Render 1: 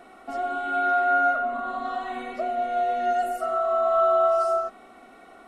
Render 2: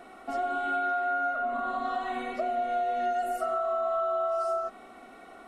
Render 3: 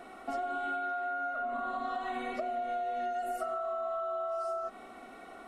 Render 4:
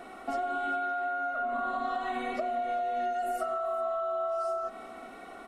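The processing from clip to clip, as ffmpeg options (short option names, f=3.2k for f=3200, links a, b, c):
-af "acompressor=threshold=-26dB:ratio=6"
-af "acompressor=threshold=-32dB:ratio=6"
-af "aecho=1:1:392:0.126,volume=3dB"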